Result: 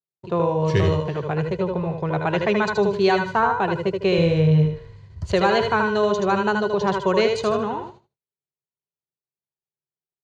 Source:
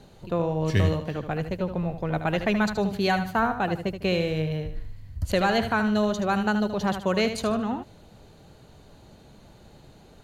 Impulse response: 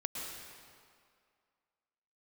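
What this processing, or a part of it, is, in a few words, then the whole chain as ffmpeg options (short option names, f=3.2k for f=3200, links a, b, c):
car door speaker: -filter_complex "[0:a]agate=range=-57dB:threshold=-41dB:ratio=16:detection=peak,highpass=89,equalizer=f=140:t=q:w=4:g=7,equalizer=f=260:t=q:w=4:g=-10,equalizer=f=390:t=q:w=4:g=9,equalizer=f=1k:t=q:w=4:g=7,lowpass=f=6.9k:w=0.5412,lowpass=f=6.9k:w=1.3066,asettb=1/sr,asplit=3[a][b][c];[a]atrim=end=4.184[d];[b]atrim=start=4.18:end=4.66,asetpts=PTS-STARTPTS,afade=t=in:d=0.004:c=qsin,afade=t=out:st=0.476:d=0.004:c=qsin,lowshelf=f=210:g=9.5[e];[c]atrim=start=4.656[f];[d][e]acrossfade=d=0.004:c1=hsin:c2=qsin[g];[g][f]acrossfade=d=0.004:c1=qsin:c2=hsin,aecho=1:1:78|156|234:0.531|0.0956|0.0172,volume=1.5dB"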